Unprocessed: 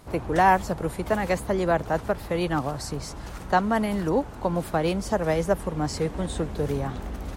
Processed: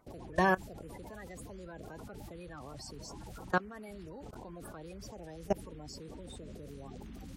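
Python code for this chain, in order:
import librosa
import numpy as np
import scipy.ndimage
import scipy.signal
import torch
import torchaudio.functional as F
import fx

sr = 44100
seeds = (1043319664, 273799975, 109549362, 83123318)

y = fx.spec_quant(x, sr, step_db=30)
y = fx.dynamic_eq(y, sr, hz=890.0, q=2.3, threshold_db=-40.0, ratio=4.0, max_db=-5)
y = fx.level_steps(y, sr, step_db=21)
y = F.gain(torch.from_numpy(y), -4.5).numpy()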